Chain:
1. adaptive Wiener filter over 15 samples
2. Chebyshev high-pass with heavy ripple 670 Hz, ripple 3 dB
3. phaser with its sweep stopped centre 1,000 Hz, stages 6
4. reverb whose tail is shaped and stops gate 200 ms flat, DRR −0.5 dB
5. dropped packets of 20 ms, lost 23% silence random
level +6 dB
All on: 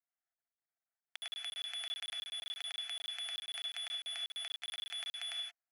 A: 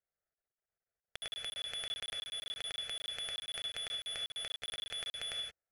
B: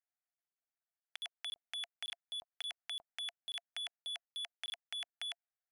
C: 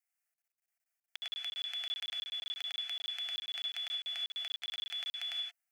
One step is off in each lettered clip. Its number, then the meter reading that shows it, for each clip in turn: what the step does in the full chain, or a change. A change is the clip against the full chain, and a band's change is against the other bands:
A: 2, 500 Hz band +7.5 dB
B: 4, change in momentary loudness spread +2 LU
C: 1, 8 kHz band −7.0 dB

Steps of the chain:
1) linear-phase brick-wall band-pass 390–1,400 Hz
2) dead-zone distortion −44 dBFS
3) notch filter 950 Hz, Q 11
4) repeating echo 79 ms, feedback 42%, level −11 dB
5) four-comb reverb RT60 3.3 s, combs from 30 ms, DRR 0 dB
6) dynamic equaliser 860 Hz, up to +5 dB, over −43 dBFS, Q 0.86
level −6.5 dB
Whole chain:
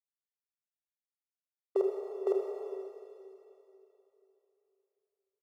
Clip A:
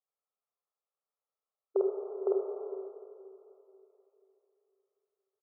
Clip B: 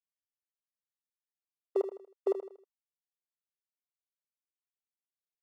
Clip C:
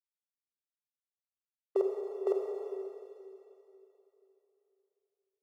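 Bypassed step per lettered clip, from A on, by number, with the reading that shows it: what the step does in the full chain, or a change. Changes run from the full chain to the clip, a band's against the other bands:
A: 2, distortion level −27 dB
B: 5, change in momentary loudness spread −15 LU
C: 4, change in momentary loudness spread −2 LU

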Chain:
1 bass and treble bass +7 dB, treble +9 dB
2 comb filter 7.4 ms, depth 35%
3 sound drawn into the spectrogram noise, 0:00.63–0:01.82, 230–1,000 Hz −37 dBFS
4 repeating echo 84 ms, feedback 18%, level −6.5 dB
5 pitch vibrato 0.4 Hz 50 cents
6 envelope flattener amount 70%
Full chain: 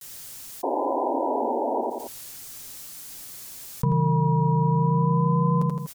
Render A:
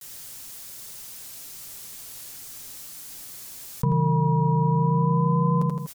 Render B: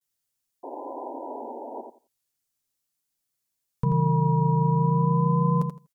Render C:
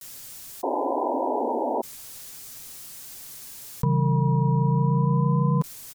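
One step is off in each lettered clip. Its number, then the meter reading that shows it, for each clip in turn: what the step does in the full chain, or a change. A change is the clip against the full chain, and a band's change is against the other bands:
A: 3, 500 Hz band −5.0 dB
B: 6, 500 Hz band −3.5 dB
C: 4, 1 kHz band −2.0 dB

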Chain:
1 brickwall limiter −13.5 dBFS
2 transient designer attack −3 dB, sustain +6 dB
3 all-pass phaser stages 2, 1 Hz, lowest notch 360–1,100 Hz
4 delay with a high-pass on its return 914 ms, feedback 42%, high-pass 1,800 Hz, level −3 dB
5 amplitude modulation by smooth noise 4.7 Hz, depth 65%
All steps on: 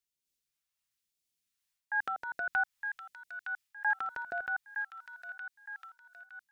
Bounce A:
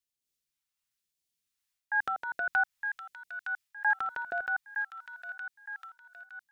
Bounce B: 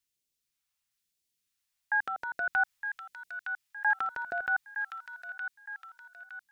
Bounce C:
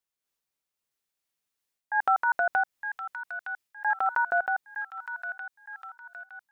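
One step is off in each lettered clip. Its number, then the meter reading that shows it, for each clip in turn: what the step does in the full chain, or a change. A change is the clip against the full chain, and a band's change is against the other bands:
1, average gain reduction 3.0 dB
5, change in crest factor −1.5 dB
3, change in momentary loudness spread +3 LU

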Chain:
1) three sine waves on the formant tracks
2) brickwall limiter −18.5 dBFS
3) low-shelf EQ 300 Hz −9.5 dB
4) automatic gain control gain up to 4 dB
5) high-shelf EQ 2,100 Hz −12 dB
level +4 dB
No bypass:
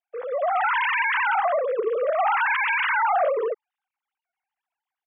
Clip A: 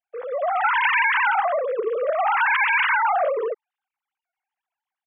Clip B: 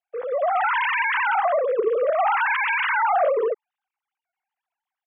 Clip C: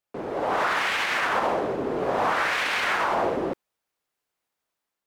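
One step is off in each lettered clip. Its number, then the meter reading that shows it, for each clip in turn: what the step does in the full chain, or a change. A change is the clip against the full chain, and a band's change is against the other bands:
2, change in crest factor +4.0 dB
3, change in momentary loudness spread −1 LU
1, change in crest factor +2.5 dB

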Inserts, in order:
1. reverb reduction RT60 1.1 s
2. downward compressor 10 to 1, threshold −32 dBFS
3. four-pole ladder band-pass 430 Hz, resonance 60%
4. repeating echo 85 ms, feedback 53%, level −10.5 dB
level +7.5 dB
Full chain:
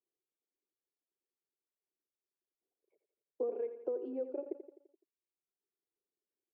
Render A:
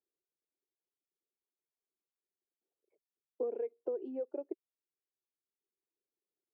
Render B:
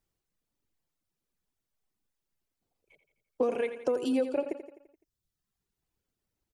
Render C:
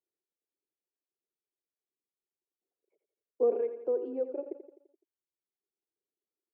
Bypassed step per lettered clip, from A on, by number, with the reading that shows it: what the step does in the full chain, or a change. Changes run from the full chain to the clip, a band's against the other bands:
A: 4, echo-to-direct ratio −9.0 dB to none audible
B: 3, change in momentary loudness spread −2 LU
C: 2, average gain reduction 5.0 dB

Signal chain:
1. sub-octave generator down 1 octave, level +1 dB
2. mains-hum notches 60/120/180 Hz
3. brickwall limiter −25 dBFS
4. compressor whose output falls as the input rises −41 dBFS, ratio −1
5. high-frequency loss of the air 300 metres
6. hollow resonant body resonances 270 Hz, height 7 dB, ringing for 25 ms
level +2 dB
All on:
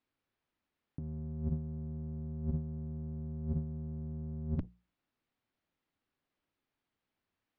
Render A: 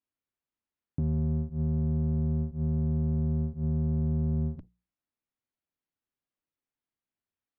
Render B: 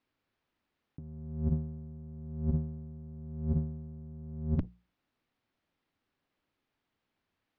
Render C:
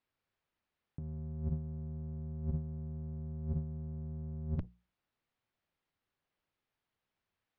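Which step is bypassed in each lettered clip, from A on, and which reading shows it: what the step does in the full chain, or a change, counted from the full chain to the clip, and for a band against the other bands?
4, change in crest factor −9.0 dB
3, average gain reduction 5.5 dB
6, change in integrated loudness −1.0 LU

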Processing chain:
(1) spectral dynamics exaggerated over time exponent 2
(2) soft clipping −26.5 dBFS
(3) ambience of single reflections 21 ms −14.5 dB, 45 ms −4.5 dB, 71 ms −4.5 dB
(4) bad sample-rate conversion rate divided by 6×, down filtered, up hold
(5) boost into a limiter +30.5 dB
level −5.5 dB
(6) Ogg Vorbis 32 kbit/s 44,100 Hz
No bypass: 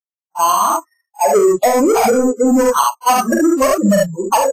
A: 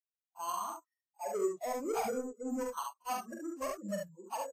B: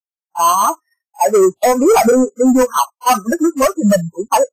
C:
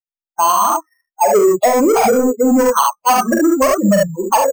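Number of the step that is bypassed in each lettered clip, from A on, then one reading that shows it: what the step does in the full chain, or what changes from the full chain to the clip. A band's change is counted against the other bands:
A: 5, change in crest factor +3.0 dB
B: 3, change in momentary loudness spread +2 LU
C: 6, change in crest factor −4.5 dB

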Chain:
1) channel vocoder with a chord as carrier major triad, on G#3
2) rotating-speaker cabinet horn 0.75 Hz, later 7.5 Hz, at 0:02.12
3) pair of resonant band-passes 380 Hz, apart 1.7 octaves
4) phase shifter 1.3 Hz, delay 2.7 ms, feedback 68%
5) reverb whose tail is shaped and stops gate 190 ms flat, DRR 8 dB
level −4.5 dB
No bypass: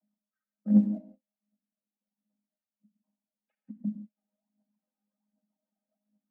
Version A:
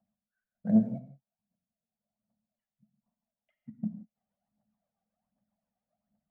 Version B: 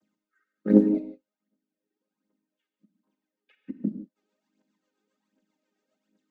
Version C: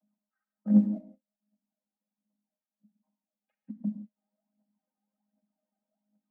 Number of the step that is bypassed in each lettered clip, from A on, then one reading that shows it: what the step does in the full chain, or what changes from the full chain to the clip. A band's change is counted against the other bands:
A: 1, change in momentary loudness spread −2 LU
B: 3, change in crest factor +4.0 dB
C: 2, change in momentary loudness spread +3 LU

